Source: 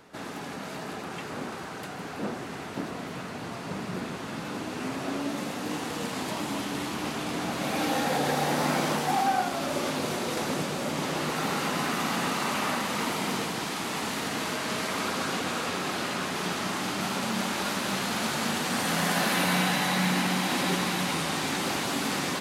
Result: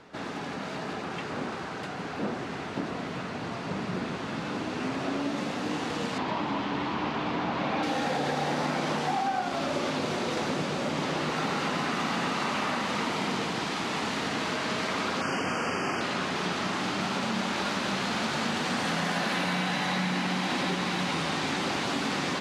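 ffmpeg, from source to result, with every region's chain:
-filter_complex "[0:a]asettb=1/sr,asplit=3[a][b][c];[a]atrim=end=6.184[d];[b]atrim=start=6.18:end=7.83,asetpts=PTS-STARTPTS,afade=t=in:d=0.004:c=qsin,afade=t=out:st=1.646:d=0.004:c=qsin,lowpass=3.8k,equalizer=f=970:w=3:g=5.5[e];[c]atrim=start=7.826[f];[d][e]acrossfade=d=0.004:c1=hsin:c2=qsin[g];[g][f]acrossfade=d=0.004:c1=qsin:c2=hsin,asettb=1/sr,asplit=3[h][i][j];[h]atrim=end=15.214[k];[i]atrim=start=15.21:end=16.01,asetpts=PTS-STARTPTS,afade=t=in:d=0.004:c=qsin,afade=t=out:st=0.796:d=0.004:c=qsin,asuperstop=centerf=3800:order=12:qfactor=2.8,asplit=2[l][m];[m]adelay=41,volume=-6dB[n];[l][n]amix=inputs=2:normalize=0,atrim=end_sample=35280[o];[j]atrim=start=16.006[p];[k][o]acrossfade=d=0.004:c1=hsin:c2=qsin[q];[q][p]acrossfade=d=0.004:c1=qsin:c2=hsin,lowpass=5.5k,acompressor=threshold=-27dB:ratio=6,volume=2dB"

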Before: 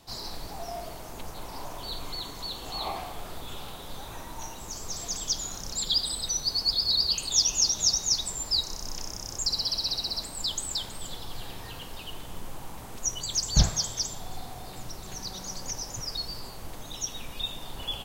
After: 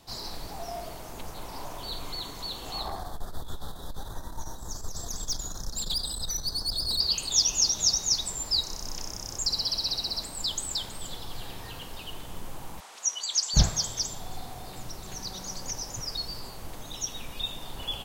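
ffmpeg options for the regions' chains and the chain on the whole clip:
-filter_complex "[0:a]asettb=1/sr,asplit=3[a][b][c];[a]atrim=end=2.814[d];[b]atrim=start=2.81:end=7,asetpts=PTS-STARTPTS,afade=t=in:d=0.004:c=qsin,afade=t=out:st=4.186:d=0.004:c=qsin,asuperstop=centerf=2500:order=8:qfactor=1.6,lowshelf=f=120:g=9.5,aeval=exprs='(tanh(15.8*val(0)+0.55)-tanh(0.55))/15.8':c=same[e];[c]atrim=start=6.996[f];[d][e]acrossfade=d=0.004:c1=hsin:c2=qsin[g];[g][f]acrossfade=d=0.004:c1=qsin:c2=hsin,asettb=1/sr,asplit=3[h][i][j];[h]atrim=end=12.804[k];[i]atrim=start=12.8:end=13.54,asetpts=PTS-STARTPTS,afade=t=in:d=0.004:c=qsin,afade=t=out:st=0.736:d=0.004:c=qsin,highpass=770,lowpass=5.7k,aemphasis=mode=production:type=cd[l];[j]atrim=start=13.536[m];[k][l]acrossfade=d=0.004:c1=hsin:c2=qsin[n];[n][m]acrossfade=d=0.004:c1=qsin:c2=hsin"

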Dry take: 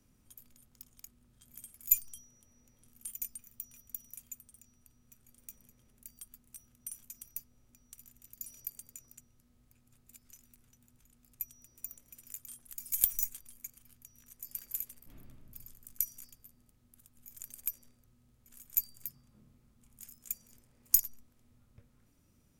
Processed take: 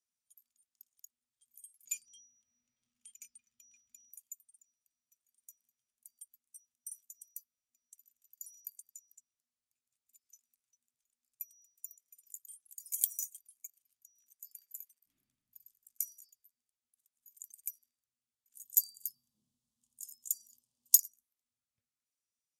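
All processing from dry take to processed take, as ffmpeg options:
-filter_complex "[0:a]asettb=1/sr,asplit=3[a][b][c];[a]atrim=end=1.854[d];[b]atrim=start=1.85:end=4.12,asetpts=PTS-STARTPTS,afade=t=in:d=0.004:c=qsin,afade=t=out:st=2.266:d=0.004:c=qsin,lowpass=4k,acontrast=79[e];[c]atrim=start=4.116[f];[d][e]acrossfade=d=0.004:c1=hsin:c2=qsin[g];[g][f]acrossfade=d=0.004:c1=qsin:c2=hsin,asettb=1/sr,asplit=3[h][i][j];[h]atrim=end=14.524[k];[i]atrim=start=14.52:end=15.02,asetpts=PTS-STARTPTS,afade=t=in:d=0.004:c=qsin,afade=t=out:st=0.496:d=0.004:c=qsin,highpass=240,highshelf=f=4.1k:g=-6[l];[j]atrim=start=15.016[m];[k][l]acrossfade=d=0.004:c1=hsin:c2=qsin[n];[n][m]acrossfade=d=0.004:c1=qsin:c2=hsin,asettb=1/sr,asplit=3[o][p][q];[o]atrim=end=18.554[r];[p]atrim=start=18.55:end=20.97,asetpts=PTS-STARTPTS,afade=t=in:d=0.004:c=qsin,afade=t=out:st=2.416:d=0.004:c=qsin,asuperstop=centerf=1800:order=8:qfactor=1.1,acontrast=90[s];[q]atrim=start=20.966[t];[r][s]acrossfade=d=0.004:c1=hsin:c2=qsin[u];[u][t]acrossfade=d=0.004:c1=qsin:c2=hsin,afftdn=nr=14:nf=-51,lowpass=7.8k,aderivative,volume=3dB"

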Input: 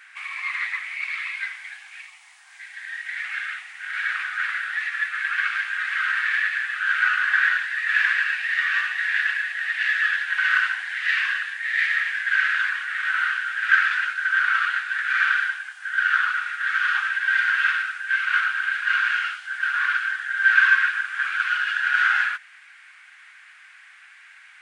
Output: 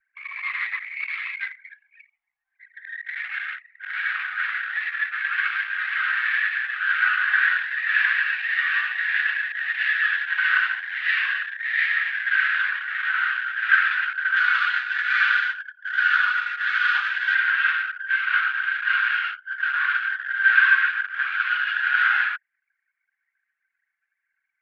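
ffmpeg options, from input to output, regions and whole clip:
-filter_complex "[0:a]asettb=1/sr,asplit=3[a][b][c];[a]atrim=end=14.364[d];[b]atrim=start=14.36:end=17.35,asetpts=PTS-STARTPTS,afade=t=in:d=0.004:c=qsin,afade=t=out:st=2.986:d=0.004:c=qsin,bass=f=250:g=10,treble=f=4k:g=11,aecho=1:1:4.1:0.48,atrim=end_sample=131859[e];[c]atrim=start=17.346[f];[d][e]acrossfade=d=0.004:c1=hsin:c2=qsin[g];[g][f]acrossfade=d=0.004:c1=qsin:c2=hsin,lowpass=f=4.1k:w=0.5412,lowpass=f=4.1k:w=1.3066,anlmdn=15.8"

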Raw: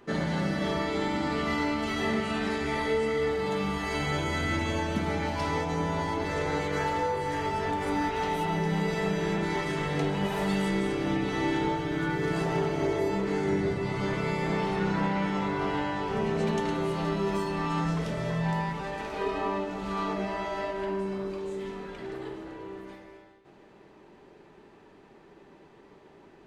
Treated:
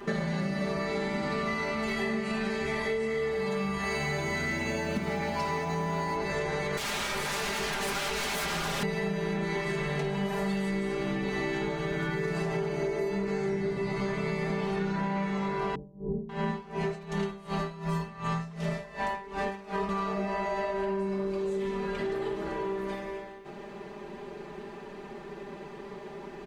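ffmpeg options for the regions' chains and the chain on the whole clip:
-filter_complex "[0:a]asettb=1/sr,asplit=3[a][b][c];[a]atrim=end=3.834[d];[b]atrim=start=3.83:end=6.16,asetpts=PTS-STARTPTS,afade=t=in:d=0.004:c=qsin,afade=t=out:st=2.326:d=0.004:c=qsin,highpass=40,aeval=exprs='clip(val(0),-1,0.0708)':c=same,acrusher=bits=9:mode=log:mix=0:aa=0.000001[e];[c]atrim=start=6.156[f];[d][e]acrossfade=d=0.004:c1=hsin:c2=qsin[g];[g][f]acrossfade=d=0.004:c1=qsin:c2=hsin,asettb=1/sr,asplit=3[h][i][j];[h]atrim=end=6.774[k];[i]atrim=start=6.77:end=8.83,asetpts=PTS-STARTPTS,afade=t=in:d=0.004:c=qsin,afade=t=out:st=2.056:d=0.004:c=qsin,highshelf=f=3.3k:g=11,aeval=exprs='0.0335*(abs(mod(val(0)/0.0335+3,4)-2)-1)':c=same[l];[j]atrim=start=8.826[m];[k][l]acrossfade=d=0.004:c1=hsin:c2=qsin[n];[n][m]acrossfade=d=0.004:c1=qsin:c2=hsin,asettb=1/sr,asplit=3[o][p][q];[o]atrim=end=15.754[r];[p]atrim=start=15.75:end=19.89,asetpts=PTS-STARTPTS,afade=t=in:d=0.004:c=qsin,afade=t=out:st=4.136:d=0.004:c=qsin,acrossover=split=400[s][t];[t]adelay=540[u];[s][u]amix=inputs=2:normalize=0,atrim=end_sample=182574,aeval=exprs='val(0)*pow(10,-22*(0.5-0.5*cos(2*PI*2.7*n/s))/20)':c=same[v];[q]atrim=start=19.886[w];[r][v]acrossfade=d=0.004:c1=hsin:c2=qsin[x];[x][w]acrossfade=d=0.004:c1=qsin:c2=hsin,aecho=1:1:5:0.96,acompressor=threshold=-37dB:ratio=6,volume=8dB"

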